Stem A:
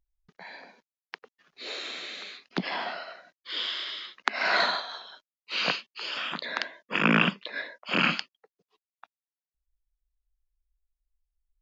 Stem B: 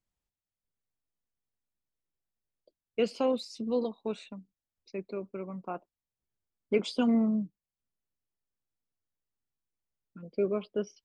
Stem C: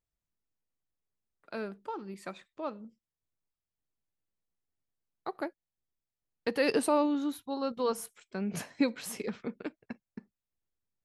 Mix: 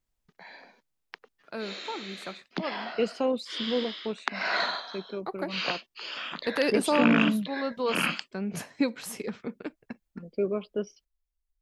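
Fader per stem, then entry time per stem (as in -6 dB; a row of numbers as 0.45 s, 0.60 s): -3.5 dB, +1.0 dB, +1.5 dB; 0.00 s, 0.00 s, 0.00 s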